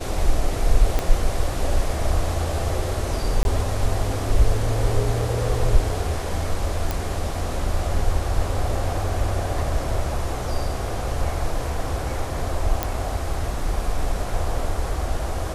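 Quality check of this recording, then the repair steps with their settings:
0.99 s: pop -8 dBFS
3.43–3.45 s: dropout 21 ms
6.91 s: pop
12.83 s: pop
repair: de-click; interpolate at 3.43 s, 21 ms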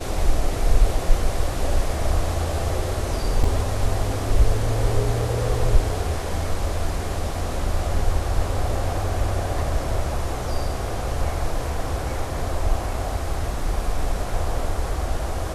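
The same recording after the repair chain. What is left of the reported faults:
0.99 s: pop

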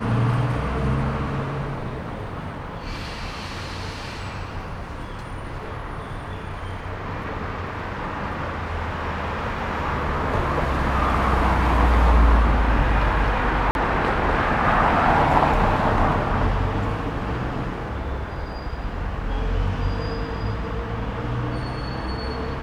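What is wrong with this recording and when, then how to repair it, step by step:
13.71–13.75 s: dropout 41 ms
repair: interpolate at 13.71 s, 41 ms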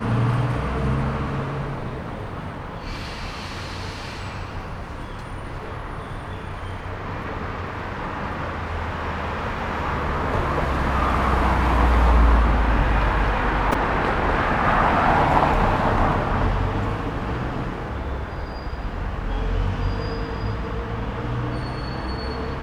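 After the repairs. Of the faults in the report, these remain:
nothing left

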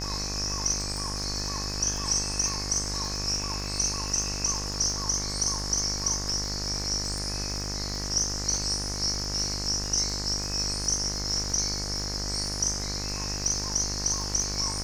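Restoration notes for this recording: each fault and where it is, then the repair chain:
buzz 50 Hz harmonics 40 -35 dBFS
crackle 52 per s -34 dBFS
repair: de-click; de-hum 50 Hz, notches 40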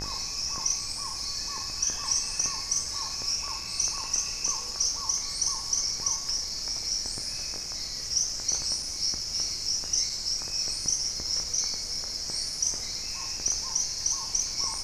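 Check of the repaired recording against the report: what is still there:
nothing left

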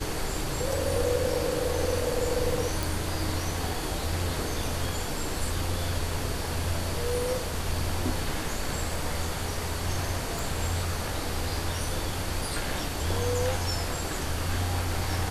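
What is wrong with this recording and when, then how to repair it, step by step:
2.83 s: pop
10.39 s: pop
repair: de-click

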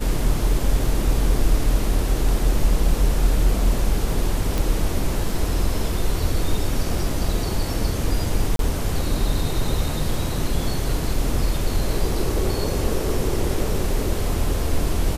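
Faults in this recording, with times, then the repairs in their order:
4.58 s: pop
8.56–8.59 s: dropout 32 ms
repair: de-click; interpolate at 8.56 s, 32 ms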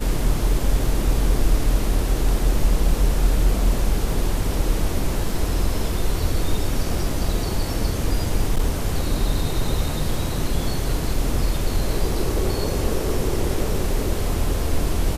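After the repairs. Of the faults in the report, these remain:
nothing left

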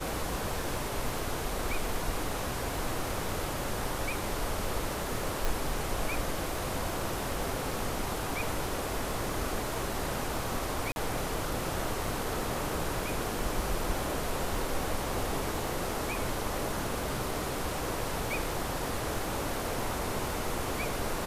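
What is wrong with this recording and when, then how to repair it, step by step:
crackle 38 per s -39 dBFS
5.45 s: pop
10.92–10.96 s: dropout 41 ms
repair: de-click; interpolate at 10.92 s, 41 ms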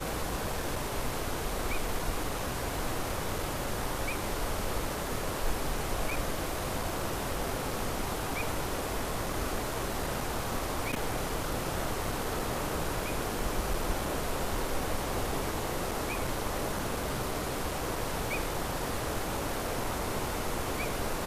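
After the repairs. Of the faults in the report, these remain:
5.45 s: pop

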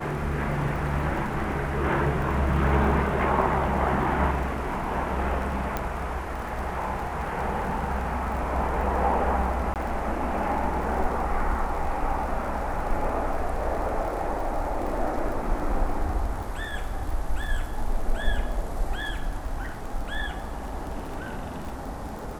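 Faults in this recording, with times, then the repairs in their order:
crackle 46 per s -34 dBFS
5.77 s: pop -13 dBFS
9.74–9.76 s: dropout 18 ms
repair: de-click; interpolate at 9.74 s, 18 ms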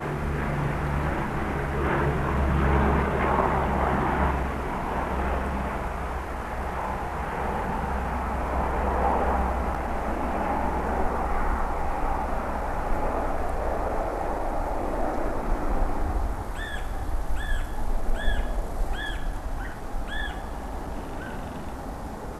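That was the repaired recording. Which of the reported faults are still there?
nothing left

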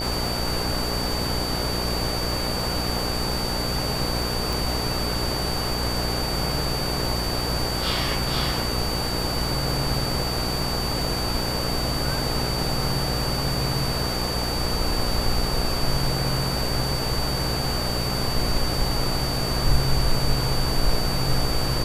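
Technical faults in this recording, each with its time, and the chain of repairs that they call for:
buzz 60 Hz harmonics 15 -29 dBFS
crackle 24 per s -31 dBFS
whine 4.6 kHz -29 dBFS
4.53 s: pop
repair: de-click; de-hum 60 Hz, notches 15; band-stop 4.6 kHz, Q 30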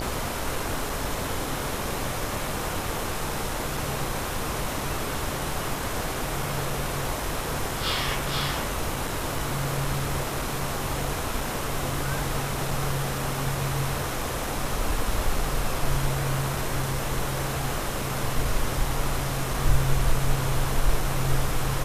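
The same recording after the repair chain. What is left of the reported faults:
nothing left

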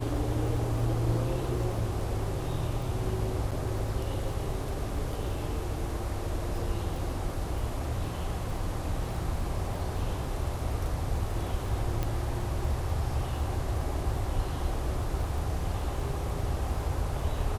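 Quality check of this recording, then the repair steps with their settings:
crackle 25 per s -38 dBFS
3.51–3.52 s: dropout 6.8 ms
12.03 s: pop -17 dBFS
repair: de-click; interpolate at 3.51 s, 6.8 ms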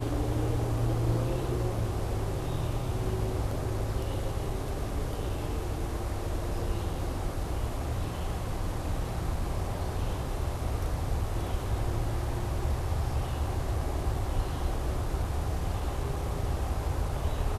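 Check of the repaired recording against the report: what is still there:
nothing left

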